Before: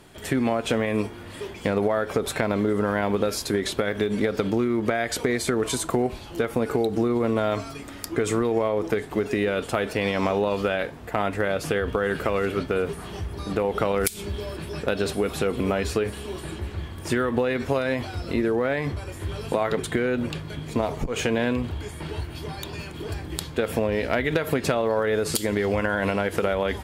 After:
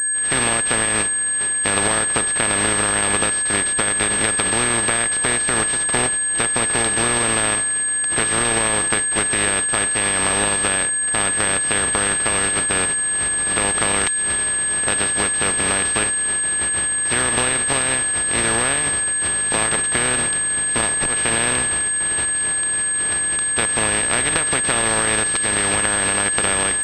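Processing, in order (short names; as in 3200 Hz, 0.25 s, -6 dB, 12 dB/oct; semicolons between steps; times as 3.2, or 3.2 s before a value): spectral contrast lowered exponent 0.26; whine 1700 Hz -30 dBFS; pulse-width modulation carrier 8400 Hz; gain +3 dB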